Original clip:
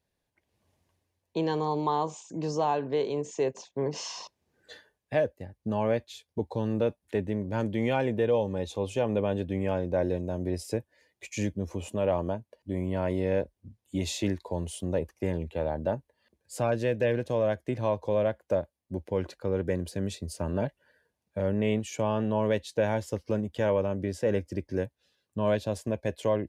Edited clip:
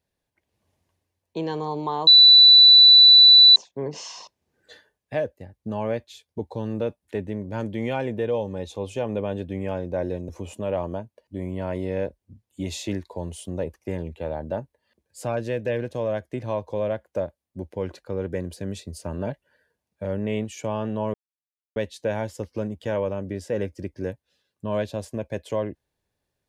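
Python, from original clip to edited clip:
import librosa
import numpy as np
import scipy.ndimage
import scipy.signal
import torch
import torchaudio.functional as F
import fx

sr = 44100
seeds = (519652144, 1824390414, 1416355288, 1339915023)

y = fx.edit(x, sr, fx.bleep(start_s=2.07, length_s=1.49, hz=3970.0, db=-7.5),
    fx.cut(start_s=10.29, length_s=1.35),
    fx.insert_silence(at_s=22.49, length_s=0.62), tone=tone)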